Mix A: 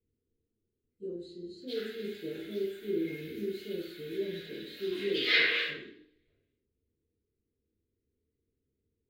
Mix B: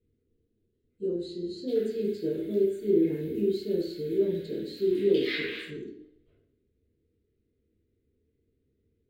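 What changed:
speech +9.0 dB; background: send -11.0 dB

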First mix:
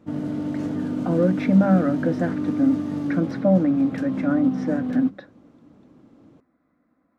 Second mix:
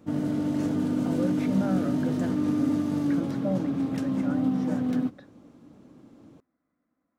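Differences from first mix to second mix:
speech -11.0 dB; master: add high shelf 6400 Hz +10 dB

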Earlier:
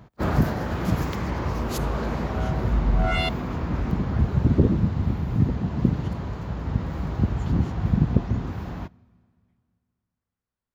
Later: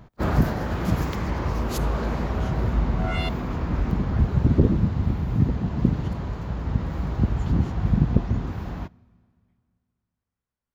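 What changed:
first sound: remove HPF 55 Hz; second sound -5.0 dB

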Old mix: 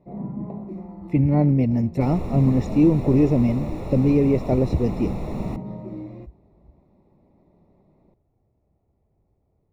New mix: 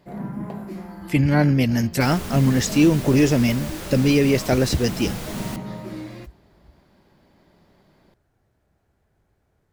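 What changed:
second sound -7.0 dB; master: remove running mean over 28 samples

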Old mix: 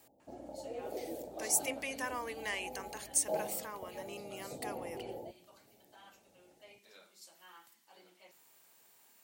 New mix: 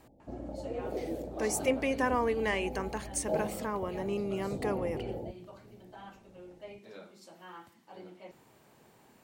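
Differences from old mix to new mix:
speech +9.0 dB; master: add tilt -4.5 dB/oct

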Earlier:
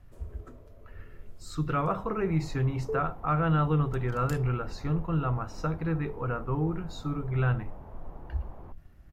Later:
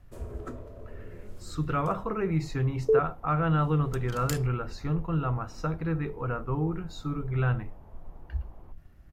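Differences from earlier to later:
first sound +10.5 dB; second sound -7.0 dB

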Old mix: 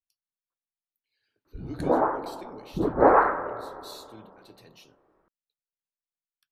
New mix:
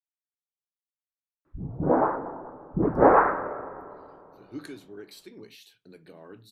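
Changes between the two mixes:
speech: entry +2.85 s; background: add bell 160 Hz +5.5 dB 1.2 oct

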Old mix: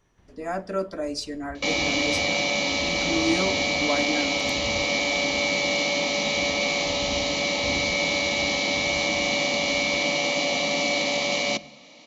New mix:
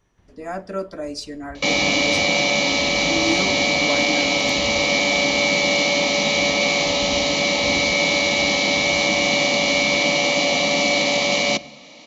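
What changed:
second sound +5.5 dB; master: remove notches 50/100/150/200 Hz

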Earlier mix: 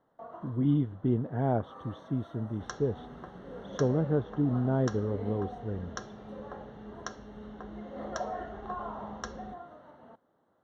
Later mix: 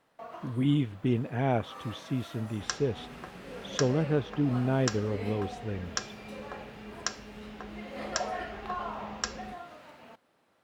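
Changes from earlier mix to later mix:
second sound: add high shelf 3700 Hz -11 dB; master: remove running mean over 18 samples

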